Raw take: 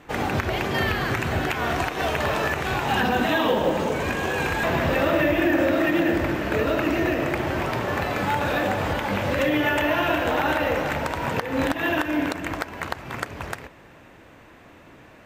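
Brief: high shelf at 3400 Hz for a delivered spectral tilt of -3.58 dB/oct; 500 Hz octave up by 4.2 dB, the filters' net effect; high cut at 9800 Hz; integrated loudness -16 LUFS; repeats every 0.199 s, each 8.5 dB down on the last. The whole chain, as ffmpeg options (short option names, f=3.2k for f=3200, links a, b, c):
-af "lowpass=9.8k,equalizer=f=500:t=o:g=5,highshelf=f=3.4k:g=6,aecho=1:1:199|398|597|796:0.376|0.143|0.0543|0.0206,volume=4.5dB"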